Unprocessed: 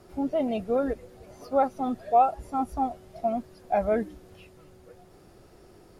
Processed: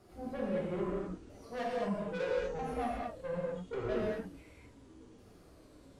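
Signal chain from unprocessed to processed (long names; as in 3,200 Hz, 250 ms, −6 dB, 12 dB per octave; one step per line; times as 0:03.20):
pitch shifter swept by a sawtooth −9 semitones, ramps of 1,296 ms
tube saturation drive 29 dB, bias 0.4
reverb whose tail is shaped and stops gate 270 ms flat, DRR −5.5 dB
level −8 dB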